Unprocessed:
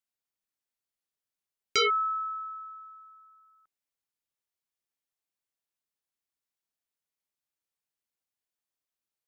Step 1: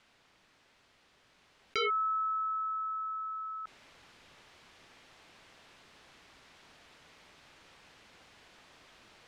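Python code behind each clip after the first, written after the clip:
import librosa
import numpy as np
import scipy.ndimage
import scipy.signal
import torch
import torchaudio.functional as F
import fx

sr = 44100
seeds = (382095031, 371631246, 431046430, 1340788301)

y = fx.rider(x, sr, range_db=4, speed_s=2.0)
y = scipy.signal.sosfilt(scipy.signal.butter(2, 3300.0, 'lowpass', fs=sr, output='sos'), y)
y = fx.env_flatten(y, sr, amount_pct=70)
y = F.gain(torch.from_numpy(y), -4.5).numpy()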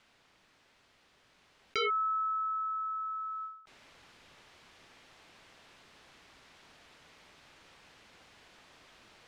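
y = fx.end_taper(x, sr, db_per_s=100.0)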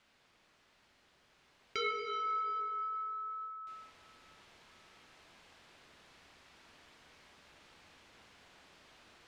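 y = fx.rev_plate(x, sr, seeds[0], rt60_s=3.1, hf_ratio=0.75, predelay_ms=0, drr_db=1.5)
y = F.gain(torch.from_numpy(y), -4.5).numpy()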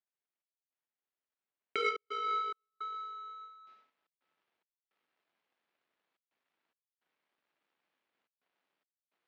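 y = fx.step_gate(x, sr, bpm=107, pattern='xxx..xxxxxxxxx.', floor_db=-24.0, edge_ms=4.5)
y = fx.power_curve(y, sr, exponent=2.0)
y = fx.bandpass_edges(y, sr, low_hz=240.0, high_hz=3300.0)
y = F.gain(torch.from_numpy(y), 8.5).numpy()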